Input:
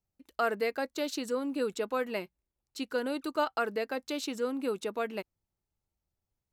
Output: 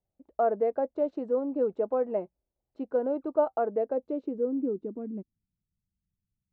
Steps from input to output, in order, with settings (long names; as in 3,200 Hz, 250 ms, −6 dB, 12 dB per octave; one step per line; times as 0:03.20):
low-pass filter sweep 660 Hz → 190 Hz, 0:03.72–0:05.56